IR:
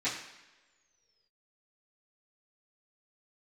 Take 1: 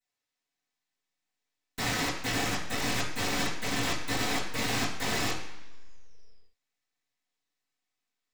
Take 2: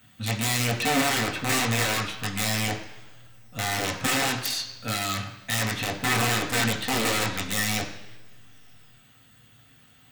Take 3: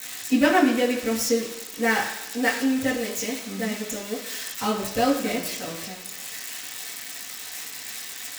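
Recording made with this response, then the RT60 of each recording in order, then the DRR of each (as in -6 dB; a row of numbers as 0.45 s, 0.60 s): 1; no single decay rate, no single decay rate, no single decay rate; -14.5 dB, -2.5 dB, -9.0 dB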